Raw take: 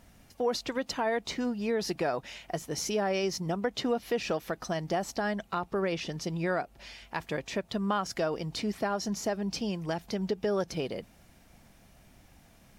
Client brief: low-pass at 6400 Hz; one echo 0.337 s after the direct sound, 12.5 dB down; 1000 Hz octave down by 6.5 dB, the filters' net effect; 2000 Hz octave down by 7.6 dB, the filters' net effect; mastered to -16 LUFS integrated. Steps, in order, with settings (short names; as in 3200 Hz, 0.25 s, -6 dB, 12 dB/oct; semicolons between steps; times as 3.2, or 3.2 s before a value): LPF 6400 Hz; bell 1000 Hz -8 dB; bell 2000 Hz -7 dB; echo 0.337 s -12.5 dB; gain +18 dB